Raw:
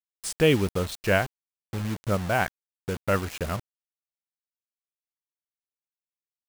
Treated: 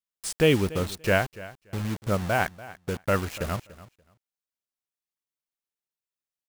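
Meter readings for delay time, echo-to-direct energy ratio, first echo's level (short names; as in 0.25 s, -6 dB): 0.289 s, -18.0 dB, -18.0 dB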